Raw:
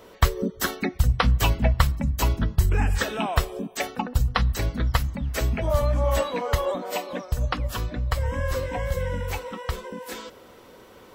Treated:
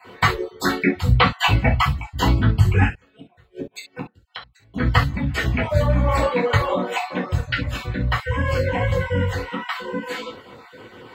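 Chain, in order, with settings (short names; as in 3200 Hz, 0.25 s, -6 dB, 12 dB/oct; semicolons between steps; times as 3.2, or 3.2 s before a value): random spectral dropouts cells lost 24%; 2.83–4.74 flipped gate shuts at -23 dBFS, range -37 dB; reverb, pre-delay 3 ms, DRR -5.5 dB; gain -7 dB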